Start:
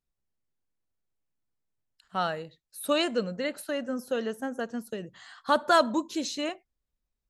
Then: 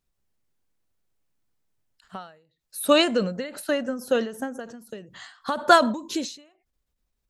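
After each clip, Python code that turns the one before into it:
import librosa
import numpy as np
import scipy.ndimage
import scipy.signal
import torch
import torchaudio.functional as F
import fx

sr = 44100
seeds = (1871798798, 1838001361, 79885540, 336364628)

y = fx.end_taper(x, sr, db_per_s=110.0)
y = y * 10.0 ** (8.0 / 20.0)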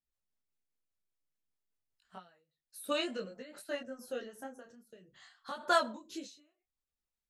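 y = fx.low_shelf(x, sr, hz=370.0, db=-6.0)
y = fx.rotary_switch(y, sr, hz=5.0, then_hz=0.7, switch_at_s=3.64)
y = fx.detune_double(y, sr, cents=18)
y = y * 10.0 ** (-7.0 / 20.0)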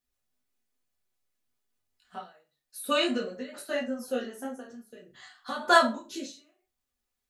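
y = fx.rev_fdn(x, sr, rt60_s=0.31, lf_ratio=0.8, hf_ratio=0.75, size_ms=24.0, drr_db=-0.5)
y = y * 10.0 ** (5.0 / 20.0)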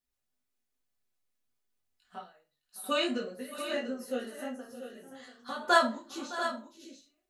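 y = fx.echo_multitap(x, sr, ms=(612, 691), db=(-16.0, -10.0))
y = y * 10.0 ** (-3.5 / 20.0)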